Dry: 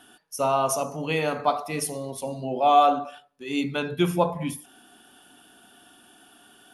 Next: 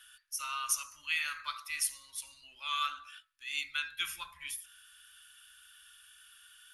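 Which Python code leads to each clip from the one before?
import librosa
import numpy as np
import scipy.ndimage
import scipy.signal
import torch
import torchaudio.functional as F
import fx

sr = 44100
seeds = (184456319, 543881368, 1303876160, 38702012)

y = scipy.signal.sosfilt(scipy.signal.cheby2(4, 40, [120.0, 790.0], 'bandstop', fs=sr, output='sos'), x)
y = F.gain(torch.from_numpy(y), -1.5).numpy()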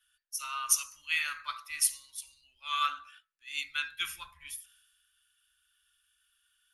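y = fx.band_widen(x, sr, depth_pct=70)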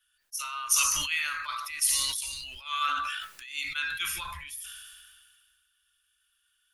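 y = fx.sustainer(x, sr, db_per_s=30.0)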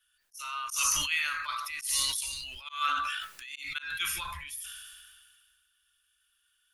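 y = fx.auto_swell(x, sr, attack_ms=168.0)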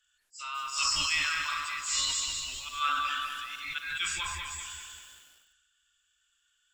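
y = fx.freq_compress(x, sr, knee_hz=3900.0, ratio=1.5)
y = fx.echo_crushed(y, sr, ms=196, feedback_pct=55, bits=9, wet_db=-5)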